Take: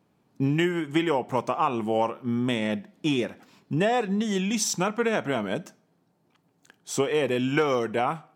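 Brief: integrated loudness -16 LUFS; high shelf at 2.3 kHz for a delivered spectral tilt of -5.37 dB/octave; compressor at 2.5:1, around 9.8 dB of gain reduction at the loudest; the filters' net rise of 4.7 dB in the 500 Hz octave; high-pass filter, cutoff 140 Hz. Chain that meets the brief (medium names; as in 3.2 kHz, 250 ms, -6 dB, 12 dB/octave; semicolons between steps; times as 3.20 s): high-pass 140 Hz; peaking EQ 500 Hz +6 dB; treble shelf 2.3 kHz -6.5 dB; compression 2.5:1, threshold -31 dBFS; trim +16 dB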